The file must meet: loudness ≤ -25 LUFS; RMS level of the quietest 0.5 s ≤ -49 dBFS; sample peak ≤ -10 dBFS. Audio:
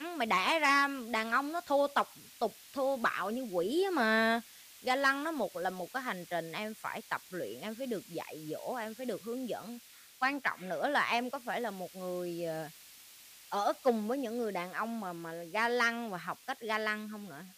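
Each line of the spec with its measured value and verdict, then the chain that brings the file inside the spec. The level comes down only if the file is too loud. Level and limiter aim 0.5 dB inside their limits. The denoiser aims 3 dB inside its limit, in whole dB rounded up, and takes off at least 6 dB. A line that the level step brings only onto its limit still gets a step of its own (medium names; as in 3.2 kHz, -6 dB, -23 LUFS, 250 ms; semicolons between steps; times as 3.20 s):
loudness -33.5 LUFS: pass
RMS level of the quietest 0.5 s -55 dBFS: pass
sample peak -16.5 dBFS: pass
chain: none needed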